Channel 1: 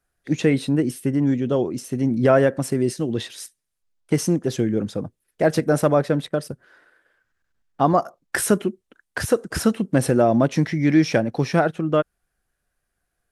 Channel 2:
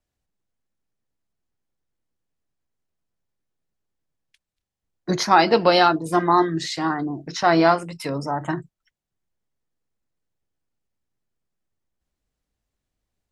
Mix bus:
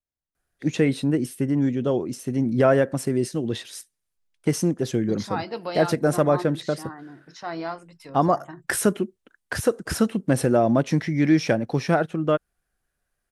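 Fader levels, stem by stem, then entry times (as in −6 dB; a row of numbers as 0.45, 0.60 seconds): −2.0, −15.0 decibels; 0.35, 0.00 seconds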